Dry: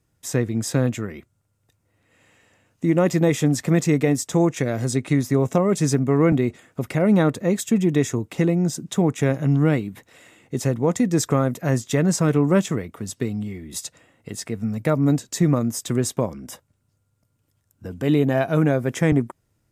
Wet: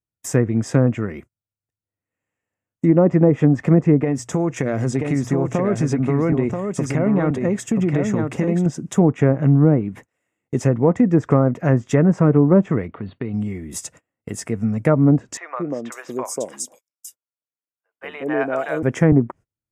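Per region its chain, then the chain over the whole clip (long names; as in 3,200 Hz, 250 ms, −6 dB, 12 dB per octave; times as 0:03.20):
0:04.00–0:08.66: mains-hum notches 60/120 Hz + downward compressor, threshold −19 dBFS + single-tap delay 982 ms −5 dB
0:12.87–0:13.34: downward compressor 2 to 1, threshold −30 dBFS + linear-phase brick-wall low-pass 4,600 Hz
0:15.37–0:18.83: high-pass filter 500 Hz + three-band delay without the direct sound mids, lows, highs 190/550 ms, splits 680/3,600 Hz
whole clip: noise gate −44 dBFS, range −29 dB; treble cut that deepens with the level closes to 800 Hz, closed at −13 dBFS; parametric band 4,000 Hz −14.5 dB 0.61 octaves; level +4.5 dB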